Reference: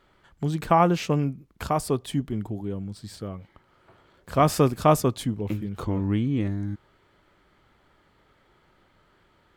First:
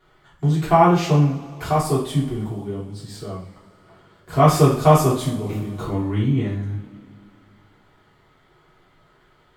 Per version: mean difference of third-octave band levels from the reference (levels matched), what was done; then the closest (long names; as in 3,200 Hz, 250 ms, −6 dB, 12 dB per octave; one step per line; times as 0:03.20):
6.0 dB: coupled-rooms reverb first 0.46 s, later 2.6 s, from −21 dB, DRR −8.5 dB
level −4.5 dB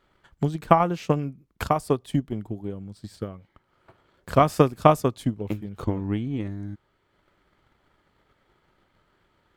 4.0 dB: transient designer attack +10 dB, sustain −3 dB
level −4.5 dB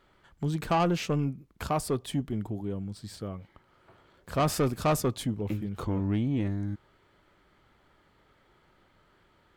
2.0 dB: soft clipping −17.5 dBFS, distortion −11 dB
level −2 dB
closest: third